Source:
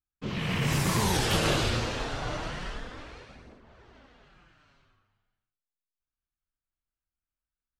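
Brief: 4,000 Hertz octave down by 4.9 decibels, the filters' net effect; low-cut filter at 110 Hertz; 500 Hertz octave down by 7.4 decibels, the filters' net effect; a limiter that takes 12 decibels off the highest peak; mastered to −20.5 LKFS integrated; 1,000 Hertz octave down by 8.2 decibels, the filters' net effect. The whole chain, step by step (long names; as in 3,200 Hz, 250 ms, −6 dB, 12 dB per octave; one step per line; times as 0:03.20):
high-pass filter 110 Hz
parametric band 500 Hz −7.5 dB
parametric band 1,000 Hz −8 dB
parametric band 4,000 Hz −6 dB
level +18 dB
brickwall limiter −11 dBFS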